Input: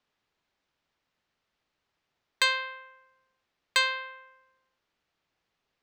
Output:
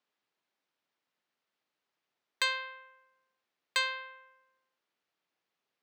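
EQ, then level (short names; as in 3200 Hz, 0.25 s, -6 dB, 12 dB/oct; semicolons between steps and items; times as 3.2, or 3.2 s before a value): HPF 200 Hz 12 dB/oct; -5.5 dB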